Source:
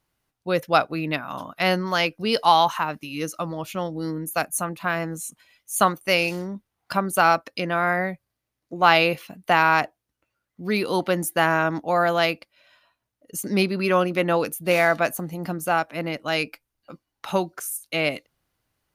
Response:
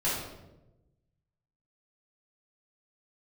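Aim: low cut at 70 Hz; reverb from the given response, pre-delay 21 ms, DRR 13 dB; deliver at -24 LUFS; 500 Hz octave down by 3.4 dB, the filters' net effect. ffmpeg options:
-filter_complex "[0:a]highpass=70,equalizer=f=500:t=o:g=-4.5,asplit=2[a][b];[1:a]atrim=start_sample=2205,adelay=21[c];[b][c]afir=irnorm=-1:irlink=0,volume=-22.5dB[d];[a][d]amix=inputs=2:normalize=0"

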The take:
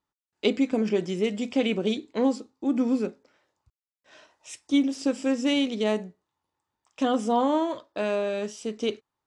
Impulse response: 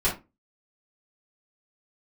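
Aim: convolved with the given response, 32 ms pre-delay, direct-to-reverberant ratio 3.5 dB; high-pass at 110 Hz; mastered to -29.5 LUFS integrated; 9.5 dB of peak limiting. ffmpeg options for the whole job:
-filter_complex "[0:a]highpass=110,alimiter=limit=-19dB:level=0:latency=1,asplit=2[a][b];[1:a]atrim=start_sample=2205,adelay=32[c];[b][c]afir=irnorm=-1:irlink=0,volume=-15dB[d];[a][d]amix=inputs=2:normalize=0,volume=-2dB"

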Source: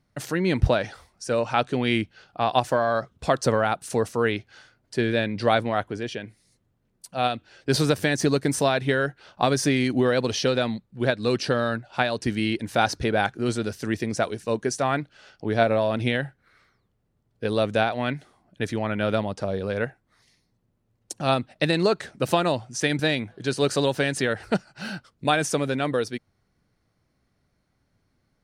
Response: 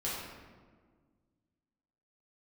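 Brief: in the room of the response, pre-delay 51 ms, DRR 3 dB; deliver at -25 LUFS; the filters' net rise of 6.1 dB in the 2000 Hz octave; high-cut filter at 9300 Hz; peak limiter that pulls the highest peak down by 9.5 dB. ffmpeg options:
-filter_complex "[0:a]lowpass=9.3k,equalizer=f=2k:t=o:g=8,alimiter=limit=-11dB:level=0:latency=1,asplit=2[a][b];[1:a]atrim=start_sample=2205,adelay=51[c];[b][c]afir=irnorm=-1:irlink=0,volume=-8dB[d];[a][d]amix=inputs=2:normalize=0,volume=-1.5dB"

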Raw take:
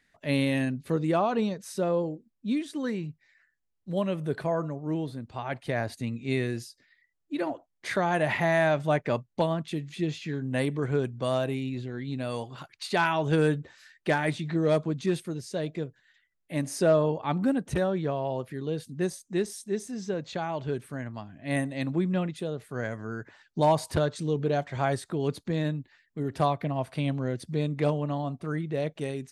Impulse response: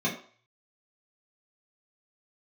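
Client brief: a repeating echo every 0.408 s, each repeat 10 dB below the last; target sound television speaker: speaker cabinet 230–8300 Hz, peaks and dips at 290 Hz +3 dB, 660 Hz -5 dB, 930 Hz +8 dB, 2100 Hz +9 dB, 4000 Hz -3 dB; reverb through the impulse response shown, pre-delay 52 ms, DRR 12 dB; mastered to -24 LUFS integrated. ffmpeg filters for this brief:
-filter_complex "[0:a]aecho=1:1:408|816|1224|1632:0.316|0.101|0.0324|0.0104,asplit=2[a][b];[1:a]atrim=start_sample=2205,adelay=52[c];[b][c]afir=irnorm=-1:irlink=0,volume=-22dB[d];[a][d]amix=inputs=2:normalize=0,highpass=f=230:w=0.5412,highpass=f=230:w=1.3066,equalizer=f=290:t=q:w=4:g=3,equalizer=f=660:t=q:w=4:g=-5,equalizer=f=930:t=q:w=4:g=8,equalizer=f=2.1k:t=q:w=4:g=9,equalizer=f=4k:t=q:w=4:g=-3,lowpass=f=8.3k:w=0.5412,lowpass=f=8.3k:w=1.3066,volume=5dB"

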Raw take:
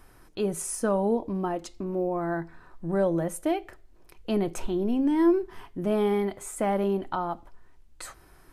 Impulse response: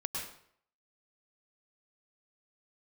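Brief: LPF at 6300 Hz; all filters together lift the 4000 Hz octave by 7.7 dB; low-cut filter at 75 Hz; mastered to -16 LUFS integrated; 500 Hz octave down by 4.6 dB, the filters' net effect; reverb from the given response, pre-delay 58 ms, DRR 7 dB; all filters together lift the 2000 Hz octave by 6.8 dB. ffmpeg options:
-filter_complex "[0:a]highpass=75,lowpass=6.3k,equalizer=f=500:t=o:g=-7,equalizer=f=2k:t=o:g=7.5,equalizer=f=4k:t=o:g=8,asplit=2[a][b];[1:a]atrim=start_sample=2205,adelay=58[c];[b][c]afir=irnorm=-1:irlink=0,volume=-9.5dB[d];[a][d]amix=inputs=2:normalize=0,volume=13.5dB"

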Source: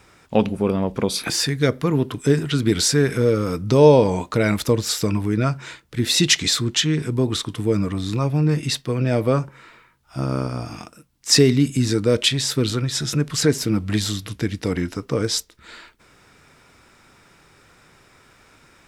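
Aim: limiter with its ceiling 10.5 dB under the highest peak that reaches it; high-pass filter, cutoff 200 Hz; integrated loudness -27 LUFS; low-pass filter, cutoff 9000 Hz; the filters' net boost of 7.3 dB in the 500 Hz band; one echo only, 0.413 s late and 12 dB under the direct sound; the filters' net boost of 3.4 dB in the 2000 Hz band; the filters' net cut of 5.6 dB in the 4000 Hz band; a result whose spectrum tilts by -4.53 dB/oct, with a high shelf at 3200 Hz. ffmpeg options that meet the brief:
-af "highpass=200,lowpass=9k,equalizer=f=500:t=o:g=8.5,equalizer=f=2k:t=o:g=7,highshelf=f=3.2k:g=-6.5,equalizer=f=4k:t=o:g=-4,alimiter=limit=-7.5dB:level=0:latency=1,aecho=1:1:413:0.251,volume=-6.5dB"

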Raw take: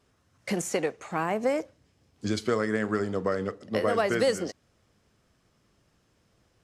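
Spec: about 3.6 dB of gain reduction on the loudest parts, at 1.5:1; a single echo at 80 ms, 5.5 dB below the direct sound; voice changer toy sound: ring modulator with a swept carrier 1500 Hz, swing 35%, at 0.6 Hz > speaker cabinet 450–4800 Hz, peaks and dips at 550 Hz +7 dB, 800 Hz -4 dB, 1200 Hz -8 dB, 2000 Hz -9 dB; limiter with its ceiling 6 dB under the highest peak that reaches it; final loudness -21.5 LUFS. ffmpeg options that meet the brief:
-af "acompressor=threshold=-30dB:ratio=1.5,alimiter=limit=-22.5dB:level=0:latency=1,aecho=1:1:80:0.531,aeval=exprs='val(0)*sin(2*PI*1500*n/s+1500*0.35/0.6*sin(2*PI*0.6*n/s))':c=same,highpass=450,equalizer=f=550:t=q:w=4:g=7,equalizer=f=800:t=q:w=4:g=-4,equalizer=f=1.2k:t=q:w=4:g=-8,equalizer=f=2k:t=q:w=4:g=-9,lowpass=f=4.8k:w=0.5412,lowpass=f=4.8k:w=1.3066,volume=16dB"

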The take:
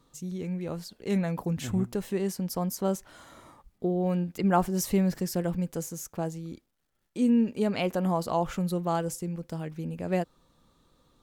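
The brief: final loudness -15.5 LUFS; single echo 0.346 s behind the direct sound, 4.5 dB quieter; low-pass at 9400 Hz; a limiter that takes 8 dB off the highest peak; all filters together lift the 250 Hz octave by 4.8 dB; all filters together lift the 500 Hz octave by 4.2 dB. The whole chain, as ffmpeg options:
-af "lowpass=9.4k,equalizer=f=250:t=o:g=6,equalizer=f=500:t=o:g=3.5,alimiter=limit=-17dB:level=0:latency=1,aecho=1:1:346:0.596,volume=11.5dB"

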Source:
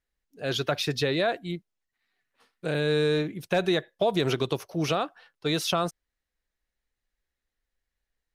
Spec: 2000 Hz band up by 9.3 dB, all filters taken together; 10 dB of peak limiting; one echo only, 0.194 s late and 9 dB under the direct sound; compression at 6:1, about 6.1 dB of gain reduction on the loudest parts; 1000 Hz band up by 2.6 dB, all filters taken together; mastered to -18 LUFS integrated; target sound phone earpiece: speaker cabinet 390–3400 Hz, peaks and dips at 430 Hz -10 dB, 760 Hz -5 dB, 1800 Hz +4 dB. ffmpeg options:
-af "equalizer=f=1k:t=o:g=4,equalizer=f=2k:t=o:g=8,acompressor=threshold=-24dB:ratio=6,alimiter=limit=-18dB:level=0:latency=1,highpass=390,equalizer=f=430:t=q:w=4:g=-10,equalizer=f=760:t=q:w=4:g=-5,equalizer=f=1.8k:t=q:w=4:g=4,lowpass=f=3.4k:w=0.5412,lowpass=f=3.4k:w=1.3066,aecho=1:1:194:0.355,volume=15dB"

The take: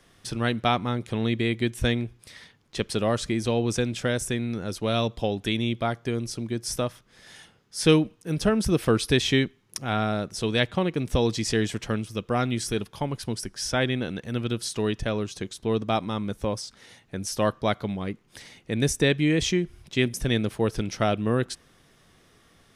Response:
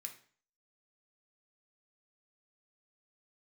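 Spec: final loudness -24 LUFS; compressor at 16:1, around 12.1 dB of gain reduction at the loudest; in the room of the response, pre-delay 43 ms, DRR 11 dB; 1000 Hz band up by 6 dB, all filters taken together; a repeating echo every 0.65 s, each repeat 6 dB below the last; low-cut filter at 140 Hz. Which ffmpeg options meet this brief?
-filter_complex "[0:a]highpass=140,equalizer=f=1k:t=o:g=8.5,acompressor=threshold=-25dB:ratio=16,aecho=1:1:650|1300|1950|2600|3250|3900:0.501|0.251|0.125|0.0626|0.0313|0.0157,asplit=2[a][b];[1:a]atrim=start_sample=2205,adelay=43[c];[b][c]afir=irnorm=-1:irlink=0,volume=-6.5dB[d];[a][d]amix=inputs=2:normalize=0,volume=7dB"

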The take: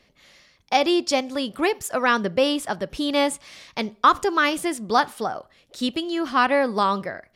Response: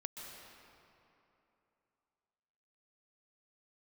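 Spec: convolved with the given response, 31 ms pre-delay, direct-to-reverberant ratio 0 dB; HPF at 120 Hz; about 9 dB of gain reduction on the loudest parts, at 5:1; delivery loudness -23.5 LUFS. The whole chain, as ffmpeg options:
-filter_complex "[0:a]highpass=120,acompressor=threshold=-22dB:ratio=5,asplit=2[a][b];[1:a]atrim=start_sample=2205,adelay=31[c];[b][c]afir=irnorm=-1:irlink=0,volume=1.5dB[d];[a][d]amix=inputs=2:normalize=0,volume=1dB"

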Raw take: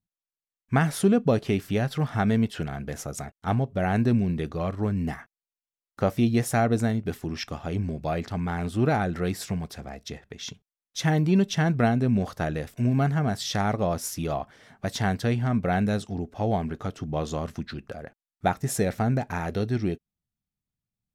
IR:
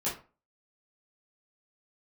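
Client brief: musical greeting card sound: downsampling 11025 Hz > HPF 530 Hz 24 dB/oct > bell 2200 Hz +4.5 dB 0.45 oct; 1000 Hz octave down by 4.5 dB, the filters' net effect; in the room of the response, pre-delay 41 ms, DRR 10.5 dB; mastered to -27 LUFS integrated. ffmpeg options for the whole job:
-filter_complex "[0:a]equalizer=f=1k:t=o:g=-7,asplit=2[a][b];[1:a]atrim=start_sample=2205,adelay=41[c];[b][c]afir=irnorm=-1:irlink=0,volume=-16.5dB[d];[a][d]amix=inputs=2:normalize=0,aresample=11025,aresample=44100,highpass=f=530:w=0.5412,highpass=f=530:w=1.3066,equalizer=f=2.2k:t=o:w=0.45:g=4.5,volume=8.5dB"

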